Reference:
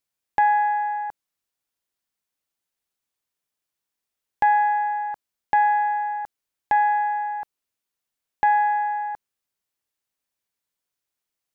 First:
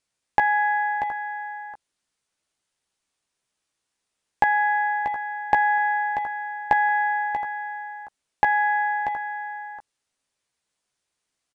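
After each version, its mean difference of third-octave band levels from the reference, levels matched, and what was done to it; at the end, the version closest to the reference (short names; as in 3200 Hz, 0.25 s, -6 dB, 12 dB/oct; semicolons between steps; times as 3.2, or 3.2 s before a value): 3.0 dB: compressor, threshold -20 dBFS, peak gain reduction 5.5 dB; doubler 15 ms -6.5 dB; on a send: echo 0.637 s -9.5 dB; on the sum: downsampling 22050 Hz; gain +5.5 dB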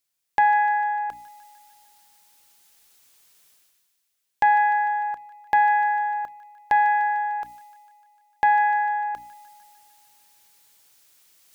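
1.0 dB: high shelf 2100 Hz +8 dB; notches 60/120/180/240/300 Hz; reverse; upward compressor, threshold -40 dBFS; reverse; thin delay 0.15 s, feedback 67%, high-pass 1600 Hz, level -12.5 dB; gain -1 dB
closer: second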